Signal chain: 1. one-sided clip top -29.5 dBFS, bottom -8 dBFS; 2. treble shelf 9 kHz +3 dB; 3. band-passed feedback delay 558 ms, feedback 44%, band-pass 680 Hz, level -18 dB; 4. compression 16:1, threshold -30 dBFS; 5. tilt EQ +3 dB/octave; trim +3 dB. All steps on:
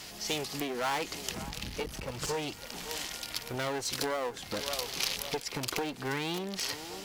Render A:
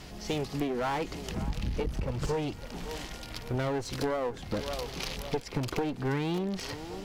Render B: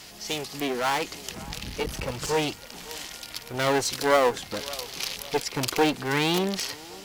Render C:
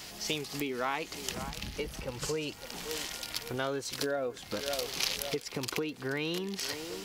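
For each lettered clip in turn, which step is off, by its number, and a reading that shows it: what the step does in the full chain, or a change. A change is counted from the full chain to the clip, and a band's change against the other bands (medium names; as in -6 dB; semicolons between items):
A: 5, 8 kHz band -10.0 dB; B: 4, mean gain reduction 4.0 dB; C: 1, distortion -6 dB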